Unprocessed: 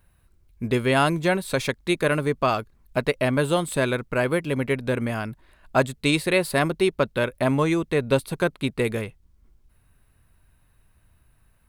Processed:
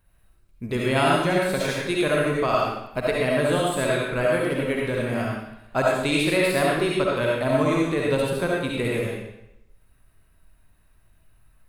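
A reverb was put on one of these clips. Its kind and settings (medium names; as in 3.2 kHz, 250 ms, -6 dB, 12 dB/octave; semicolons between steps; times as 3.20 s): algorithmic reverb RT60 0.83 s, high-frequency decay 0.95×, pre-delay 30 ms, DRR -4 dB; trim -4.5 dB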